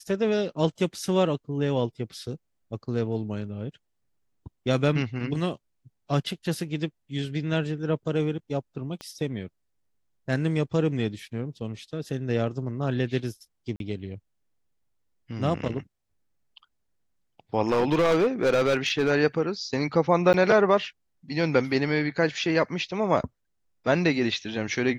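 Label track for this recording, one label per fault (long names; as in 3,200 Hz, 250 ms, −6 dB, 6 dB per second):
9.010000	9.010000	click −23 dBFS
13.760000	13.800000	drop-out 42 ms
17.680000	19.110000	clipping −17.5 dBFS
20.330000	20.340000	drop-out 9.8 ms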